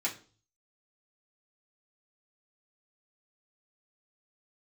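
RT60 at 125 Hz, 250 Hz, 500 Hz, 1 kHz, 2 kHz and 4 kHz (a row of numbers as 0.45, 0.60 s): 0.75, 0.45, 0.45, 0.35, 0.35, 0.40 s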